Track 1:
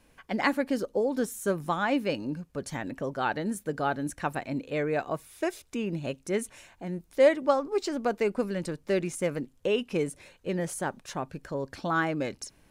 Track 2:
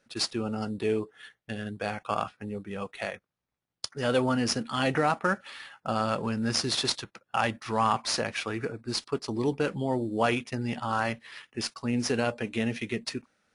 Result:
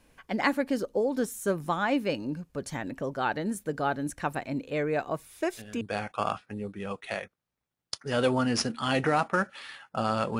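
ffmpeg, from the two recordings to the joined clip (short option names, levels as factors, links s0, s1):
-filter_complex "[1:a]asplit=2[s0][s1];[0:a]apad=whole_dur=10.39,atrim=end=10.39,atrim=end=5.812[s2];[s1]atrim=start=1.718:end=6.3[s3];[s0]atrim=start=1.32:end=1.72,asetpts=PTS-STARTPTS,volume=0.299,afade=t=in:d=0.004:c=hsin,afade=t=out:st=0.396:d=0.004:c=hsin,adelay=238581S[s4];[s2][s3]acrossfade=d=0.004:c1=hsin:c2=hsin[s5];[s5][s4]amix=inputs=2:normalize=0"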